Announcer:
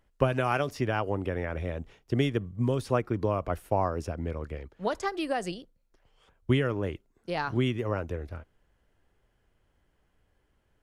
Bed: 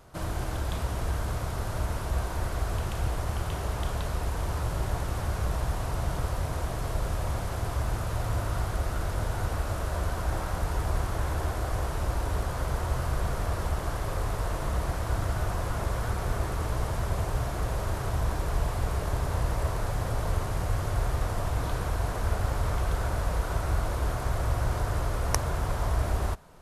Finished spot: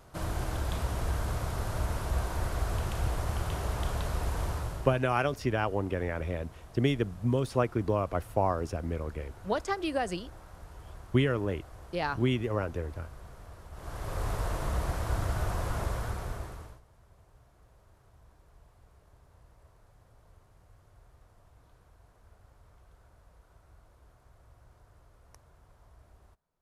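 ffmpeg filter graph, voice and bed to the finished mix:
ffmpeg -i stem1.wav -i stem2.wav -filter_complex "[0:a]adelay=4650,volume=-0.5dB[link_01];[1:a]volume=15.5dB,afade=type=out:start_time=4.43:duration=0.57:silence=0.133352,afade=type=in:start_time=13.71:duration=0.58:silence=0.141254,afade=type=out:start_time=15.79:duration=1.02:silence=0.0354813[link_02];[link_01][link_02]amix=inputs=2:normalize=0" out.wav

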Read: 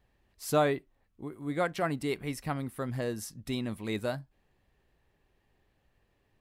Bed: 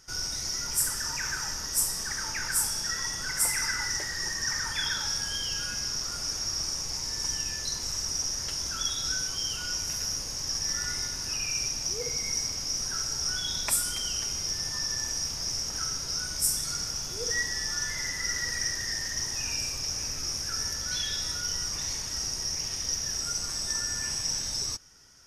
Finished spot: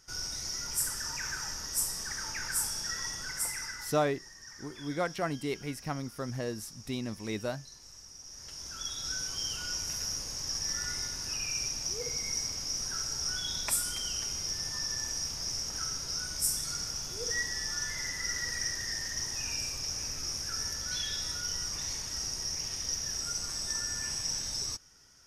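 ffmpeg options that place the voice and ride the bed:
ffmpeg -i stem1.wav -i stem2.wav -filter_complex "[0:a]adelay=3400,volume=-2dB[link_01];[1:a]volume=11dB,afade=type=out:start_time=3.09:duration=0.99:silence=0.188365,afade=type=in:start_time=8.22:duration=1.2:silence=0.16788[link_02];[link_01][link_02]amix=inputs=2:normalize=0" out.wav

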